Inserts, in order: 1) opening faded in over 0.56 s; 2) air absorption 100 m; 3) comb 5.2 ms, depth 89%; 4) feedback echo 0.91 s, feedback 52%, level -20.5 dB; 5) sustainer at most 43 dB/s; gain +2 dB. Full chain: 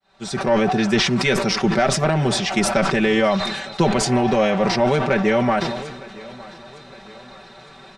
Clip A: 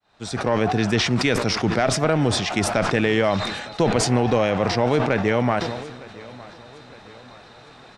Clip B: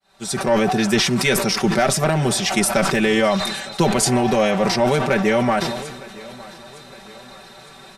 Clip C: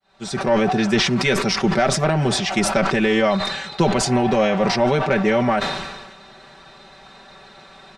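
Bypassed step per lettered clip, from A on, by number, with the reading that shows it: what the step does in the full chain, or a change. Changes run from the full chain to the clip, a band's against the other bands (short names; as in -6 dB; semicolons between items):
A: 3, 125 Hz band +2.5 dB; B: 2, 8 kHz band +5.0 dB; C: 4, momentary loudness spread change -5 LU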